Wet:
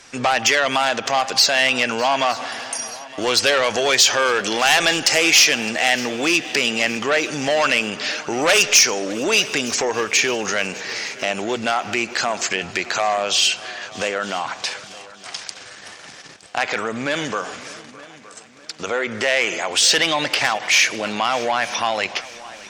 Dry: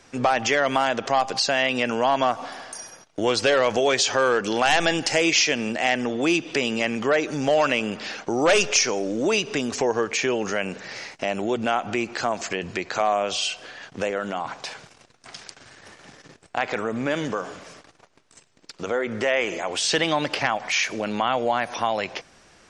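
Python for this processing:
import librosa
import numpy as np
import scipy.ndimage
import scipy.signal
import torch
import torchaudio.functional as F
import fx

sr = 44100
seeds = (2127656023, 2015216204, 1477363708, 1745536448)

y = fx.cheby_harmonics(x, sr, harmonics=(5,), levels_db=(-16,), full_scale_db=-7.0)
y = fx.tilt_shelf(y, sr, db=-5.5, hz=970.0)
y = fx.echo_heads(y, sr, ms=305, heads='second and third', feedback_pct=47, wet_db=-20.0)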